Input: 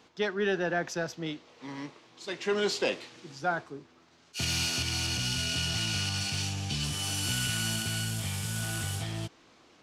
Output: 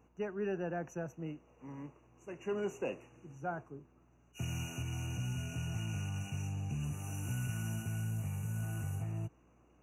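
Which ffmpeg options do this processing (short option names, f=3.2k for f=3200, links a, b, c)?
-af "afftfilt=real='re*(1-between(b*sr/4096,2900,5800))':imag='im*(1-between(b*sr/4096,2900,5800))':win_size=4096:overlap=0.75,equalizer=f=125:t=o:w=1:g=7,equalizer=f=2k:t=o:w=1:g=-11,equalizer=f=4k:t=o:w=1:g=4,equalizer=f=8k:t=o:w=1:g=-11,aeval=exprs='val(0)+0.000891*(sin(2*PI*60*n/s)+sin(2*PI*2*60*n/s)/2+sin(2*PI*3*60*n/s)/3+sin(2*PI*4*60*n/s)/4+sin(2*PI*5*60*n/s)/5)':c=same,volume=-7.5dB"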